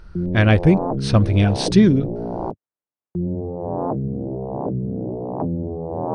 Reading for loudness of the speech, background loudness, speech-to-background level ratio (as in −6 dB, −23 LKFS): −17.5 LKFS, −26.5 LKFS, 9.0 dB